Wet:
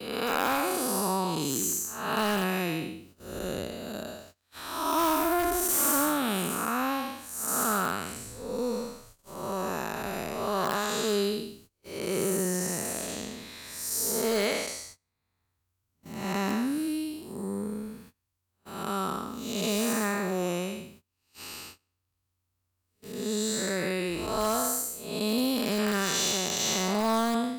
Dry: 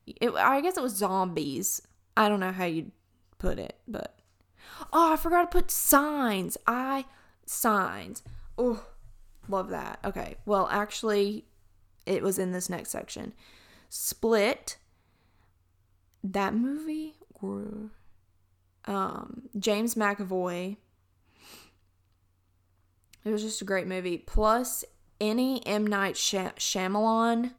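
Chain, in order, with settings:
spectrum smeared in time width 285 ms
high-pass filter 47 Hz
noise gate −59 dBFS, range −25 dB
high-shelf EQ 3,000 Hz +10.5 dB
in parallel at −8.5 dB: wrap-around overflow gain 20 dB
on the sum: multiband upward and downward compressor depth 40%

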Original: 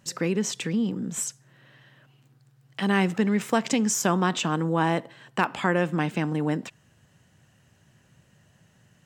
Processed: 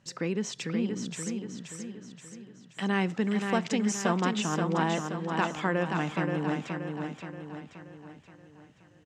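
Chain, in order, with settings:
low-pass filter 6,400 Hz 12 dB per octave
on a send: repeating echo 527 ms, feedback 49%, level −5 dB
on the sum: level −5 dB

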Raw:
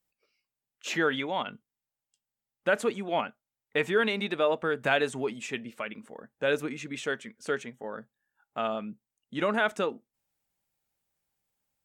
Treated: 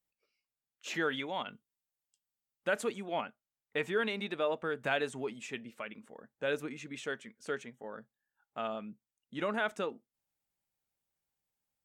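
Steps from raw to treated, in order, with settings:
0:00.94–0:03.06: high-shelf EQ 4,100 Hz +5.5 dB
level −6.5 dB

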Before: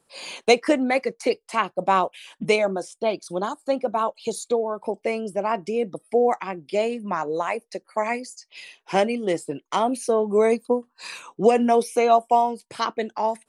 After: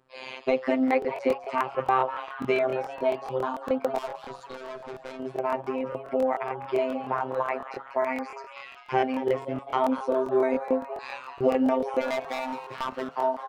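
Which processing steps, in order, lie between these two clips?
de-essing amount 60%
low-pass filter 2,200 Hz 12 dB per octave
hum removal 157.8 Hz, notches 8
in parallel at 0 dB: downward compressor, threshold −32 dBFS, peak gain reduction 19 dB
0:03.95–0:05.20: on the sum: tube saturation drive 31 dB, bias 0.25
0:12.01–0:13.04: hard clipping −20.5 dBFS, distortion −13 dB
phases set to zero 130 Hz
on a send: echo with shifted repeats 199 ms, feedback 56%, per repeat +150 Hz, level −12.5 dB
on the sum: regular buffer underruns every 0.14 s, samples 1,024, repeat, from 0:00.86
level −2 dB

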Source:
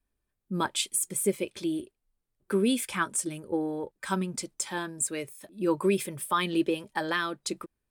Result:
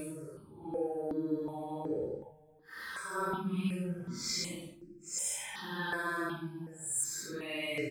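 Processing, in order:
far-end echo of a speakerphone 220 ms, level −25 dB
reversed playback
downward compressor, threshold −33 dBFS, peak gain reduction 13 dB
reversed playback
mains-hum notches 50/100/150/200/250/300/350 Hz
extreme stretch with random phases 4.2×, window 0.10 s, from 0:03.36
step-sequenced phaser 2.7 Hz 820–3,500 Hz
level +4.5 dB

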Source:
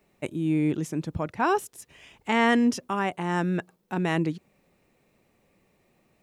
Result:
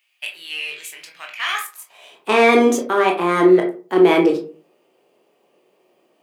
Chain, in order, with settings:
formants moved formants +3 semitones
leveller curve on the samples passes 1
high-pass filter sweep 2,400 Hz → 370 Hz, 0:01.51–0:02.19
convolution reverb RT60 0.35 s, pre-delay 16 ms, DRR 0.5 dB
level +2.5 dB

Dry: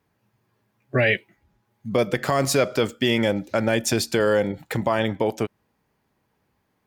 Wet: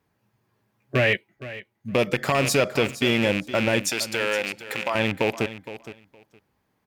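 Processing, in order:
loose part that buzzes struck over −28 dBFS, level −14 dBFS
0:03.83–0:04.95: high-pass filter 890 Hz 6 dB per octave
repeating echo 465 ms, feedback 16%, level −14 dB
0:01.15–0:01.94: expander for the loud parts 1.5 to 1, over −40 dBFS
level −1 dB

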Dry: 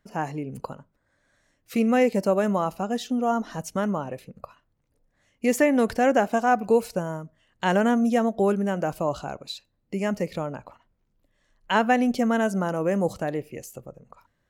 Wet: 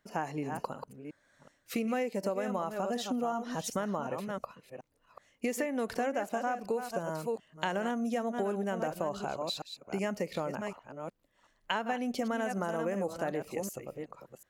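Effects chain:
delay that plays each chunk backwards 370 ms, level −9.5 dB
low-shelf EQ 170 Hz −11 dB
downward compressor 10 to 1, threshold −29 dBFS, peak gain reduction 14 dB

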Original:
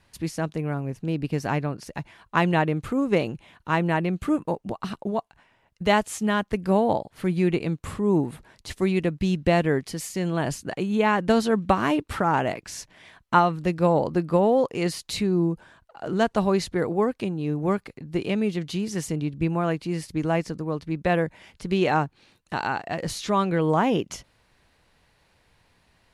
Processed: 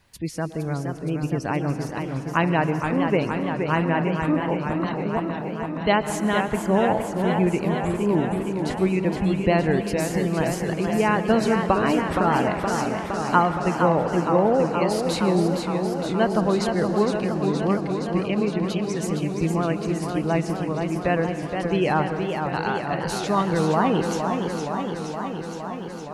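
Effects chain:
pitch vibrato 9.9 Hz 23 cents
log-companded quantiser 6 bits
gate on every frequency bin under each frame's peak −30 dB strong
on a send at −11 dB: convolution reverb RT60 2.5 s, pre-delay 108 ms
on the sum: feedback echo with a swinging delay time 467 ms, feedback 76%, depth 129 cents, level −6 dB

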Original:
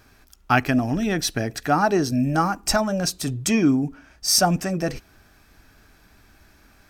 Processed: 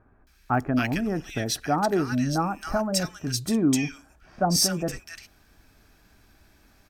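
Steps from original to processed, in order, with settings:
multiband delay without the direct sound lows, highs 270 ms, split 1,500 Hz
level −3.5 dB

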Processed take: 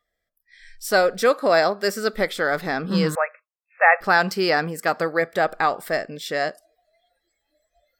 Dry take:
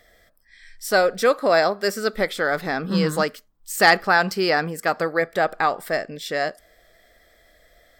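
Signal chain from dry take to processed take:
noise reduction from a noise print of the clip's start 23 dB
0:03.15–0:04.01: linear-phase brick-wall band-pass 480–2,700 Hz

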